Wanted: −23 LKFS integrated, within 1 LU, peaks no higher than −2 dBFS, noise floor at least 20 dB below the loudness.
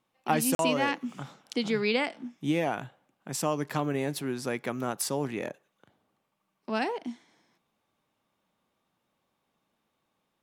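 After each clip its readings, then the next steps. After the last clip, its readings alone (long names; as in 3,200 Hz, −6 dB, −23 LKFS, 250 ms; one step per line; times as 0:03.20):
number of dropouts 1; longest dropout 42 ms; integrated loudness −30.5 LKFS; sample peak −11.0 dBFS; target loudness −23.0 LKFS
→ repair the gap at 0:00.55, 42 ms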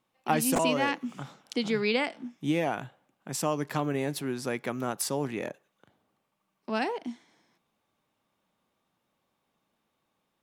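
number of dropouts 0; integrated loudness −30.5 LKFS; sample peak −11.0 dBFS; target loudness −23.0 LKFS
→ level +7.5 dB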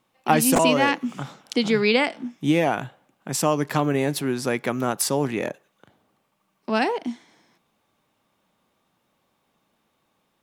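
integrated loudness −23.0 LKFS; sample peak −3.5 dBFS; background noise floor −71 dBFS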